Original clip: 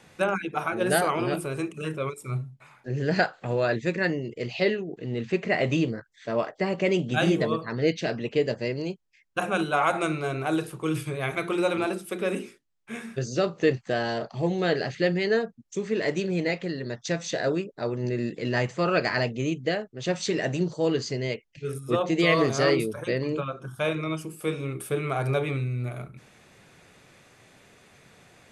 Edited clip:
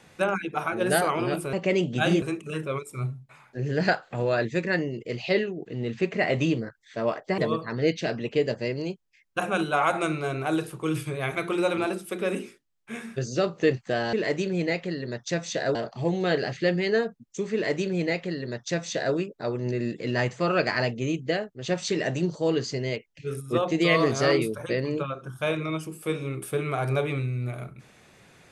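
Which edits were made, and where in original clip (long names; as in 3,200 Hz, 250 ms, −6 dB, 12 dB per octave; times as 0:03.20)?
0:06.69–0:07.38: move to 0:01.53
0:15.91–0:17.53: duplicate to 0:14.13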